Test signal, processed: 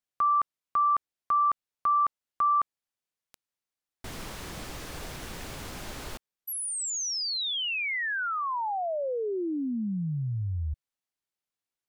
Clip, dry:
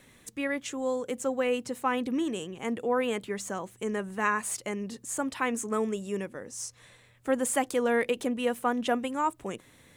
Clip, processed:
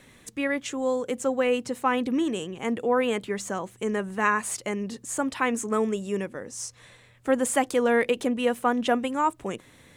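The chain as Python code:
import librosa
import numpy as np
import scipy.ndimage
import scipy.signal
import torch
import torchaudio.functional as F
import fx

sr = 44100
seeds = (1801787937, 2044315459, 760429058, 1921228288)

y = fx.high_shelf(x, sr, hz=11000.0, db=-7.0)
y = y * librosa.db_to_amplitude(4.0)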